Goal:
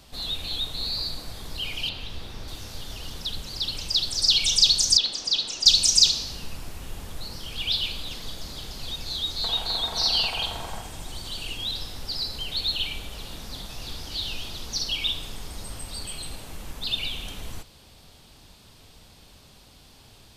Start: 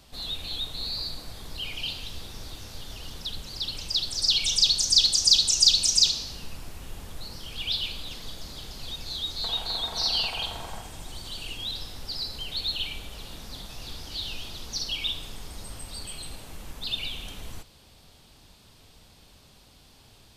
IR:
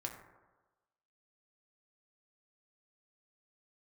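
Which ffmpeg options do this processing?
-filter_complex "[0:a]asettb=1/sr,asplit=3[s0][s1][s2];[s0]atrim=end=1.894[s3];[s1]atrim=start=1.89:end=2.48,asetpts=PTS-STARTPTS,afade=t=in:d=0.004:c=qsin,afade=t=out:st=0.586:d=0.004:c=qsin,acrossover=split=3900[s4][s5];[s5]acompressor=threshold=0.00178:ratio=4:attack=1:release=60[s6];[s4][s6]amix=inputs=2:normalize=0[s7];[s2]atrim=start=2.476[s8];[s3][s7]acrossfade=d=0.004:c1=hsin:c2=qsin[s9];[s9][s8]acrossfade=d=0.004:c1=qsin:c2=hsin,asettb=1/sr,asplit=3[s10][s11][s12];[s10]atrim=end=4.974[s13];[s11]atrim=start=4.97:end=5.66,asetpts=PTS-STARTPTS,afade=t=in:d=0.004:c=qsin,afade=t=out:st=0.686:d=0.004:c=qsin,acrossover=split=200 3500:gain=0.141 1 0.1[s14][s15][s16];[s14][s15][s16]amix=inputs=3:normalize=0[s17];[s12]atrim=start=5.656[s18];[s13][s17]acrossfade=d=0.004:c1=hsin:c2=qsin[s19];[s19][s18]acrossfade=d=0.004:c1=qsin:c2=hsin,volume=1.41"

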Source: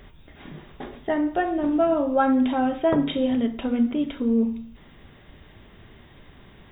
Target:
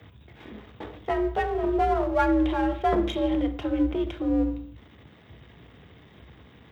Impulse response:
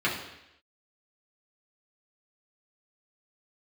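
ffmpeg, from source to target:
-af "aeval=exprs='if(lt(val(0),0),0.447*val(0),val(0))':c=same,afreqshift=60"

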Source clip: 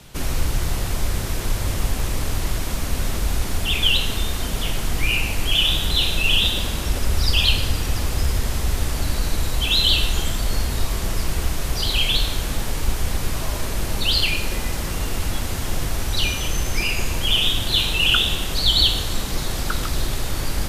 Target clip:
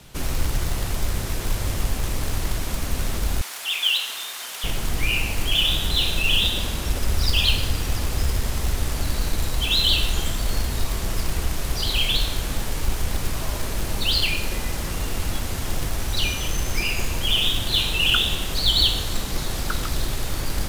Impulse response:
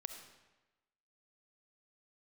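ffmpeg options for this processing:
-filter_complex "[0:a]asplit=2[s0][s1];[s1]acrusher=bits=2:mode=log:mix=0:aa=0.000001,volume=0.422[s2];[s0][s2]amix=inputs=2:normalize=0,asettb=1/sr,asplit=3[s3][s4][s5];[s3]atrim=end=3.414[s6];[s4]atrim=start=3.41:end=4.64,asetpts=PTS-STARTPTS,afade=t=in:d=0.004:c=qsin,afade=t=out:st=1.226:d=0.004:c=qsin,highpass=1000[s7];[s5]atrim=start=4.636[s8];[s6][s7]acrossfade=d=0.004:c1=hsin:c2=qsin[s9];[s9][s8]acrossfade=d=0.004:c1=qsin:c2=hsin,volume=0.562"

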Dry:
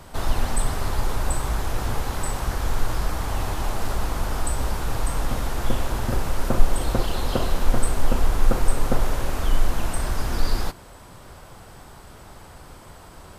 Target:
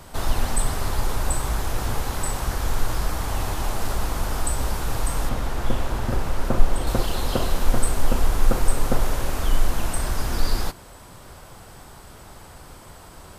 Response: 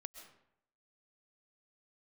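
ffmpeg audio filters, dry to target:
-af "asetnsamples=n=441:p=0,asendcmd='5.29 highshelf g -4.5;6.87 highshelf g 4',highshelf=f=4800:g=4"

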